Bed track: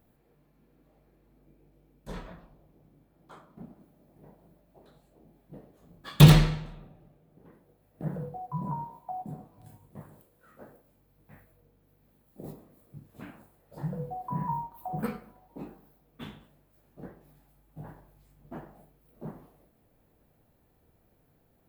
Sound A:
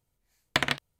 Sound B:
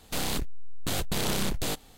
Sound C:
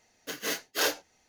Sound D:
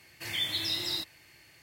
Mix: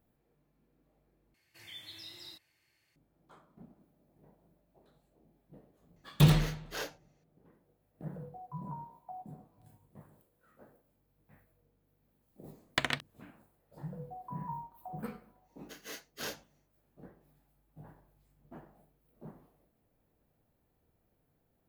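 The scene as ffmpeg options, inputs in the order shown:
ffmpeg -i bed.wav -i cue0.wav -i cue1.wav -i cue2.wav -i cue3.wav -filter_complex "[3:a]asplit=2[link_01][link_02];[0:a]volume=-8.5dB[link_03];[link_01]highshelf=frequency=4200:gain=-6.5[link_04];[link_03]asplit=2[link_05][link_06];[link_05]atrim=end=1.344[link_07];[4:a]atrim=end=1.62,asetpts=PTS-STARTPTS,volume=-17dB[link_08];[link_06]atrim=start=2.956[link_09];[link_04]atrim=end=1.28,asetpts=PTS-STARTPTS,volume=-10.5dB,afade=type=in:duration=0.004:curve=hsin,afade=type=out:start_time=1.276:duration=0.004:curve=hsin,adelay=5960[link_10];[1:a]atrim=end=0.99,asetpts=PTS-STARTPTS,volume=-5.5dB,afade=type=in:duration=0.004:curve=hsin,afade=type=out:start_time=0.986:duration=0.004:curve=hsin,adelay=12220[link_11];[link_02]atrim=end=1.28,asetpts=PTS-STARTPTS,volume=-13.5dB,afade=type=in:duration=0.1,afade=type=out:start_time=1.18:duration=0.1,adelay=15420[link_12];[link_07][link_08]acrossfade=duration=0.004:curve1=hsin:curve2=hsin[link_13];[link_13][link_09]acrossfade=duration=0.004:curve1=hsin:curve2=hsin[link_14];[link_14][link_10][link_11][link_12]amix=inputs=4:normalize=0" out.wav

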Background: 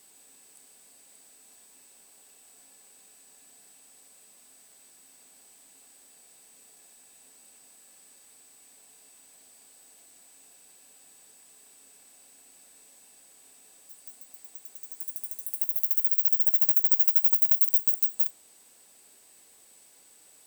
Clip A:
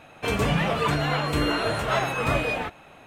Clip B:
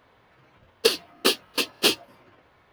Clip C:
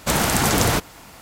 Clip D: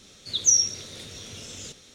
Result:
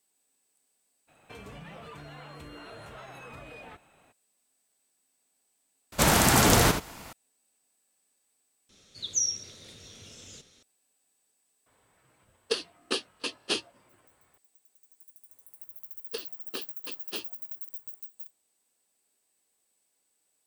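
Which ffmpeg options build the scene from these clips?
ffmpeg -i bed.wav -i cue0.wav -i cue1.wav -i cue2.wav -i cue3.wav -filter_complex "[2:a]asplit=2[link_01][link_02];[0:a]volume=-18.5dB[link_03];[1:a]acompressor=threshold=-29dB:ratio=6:attack=3.2:release=140:knee=1:detection=peak[link_04];[3:a]aecho=1:1:79:0.376[link_05];[link_01]aresample=22050,aresample=44100[link_06];[link_03]asplit=2[link_07][link_08];[link_07]atrim=end=8.694[link_09];[4:a]atrim=end=1.94,asetpts=PTS-STARTPTS,volume=-8.5dB[link_10];[link_08]atrim=start=10.626[link_11];[link_04]atrim=end=3.06,asetpts=PTS-STARTPTS,volume=-13dB,afade=type=in:duration=0.02,afade=type=out:start_time=3.04:duration=0.02,adelay=1070[link_12];[link_05]atrim=end=1.21,asetpts=PTS-STARTPTS,volume=-2dB,afade=type=in:duration=0.004:curve=hsin,afade=type=out:start_time=1.206:duration=0.004:curve=hsin,adelay=5920[link_13];[link_06]atrim=end=2.72,asetpts=PTS-STARTPTS,volume=-9dB,afade=type=in:duration=0.004:curve=hsin,afade=type=out:start_time=2.716:duration=0.004:curve=hsin,adelay=11660[link_14];[link_02]atrim=end=2.72,asetpts=PTS-STARTPTS,volume=-17.5dB,afade=type=in:duration=0.004:curve=hsin,afade=type=out:start_time=2.716:duration=0.004:curve=hsin,adelay=15290[link_15];[link_09][link_10]acrossfade=duration=0.004:curve1=hsin:curve2=hsin[link_16];[link_16][link_11]acrossfade=duration=0.004:curve1=hsin:curve2=hsin[link_17];[link_17][link_12][link_13][link_14][link_15]amix=inputs=5:normalize=0" out.wav

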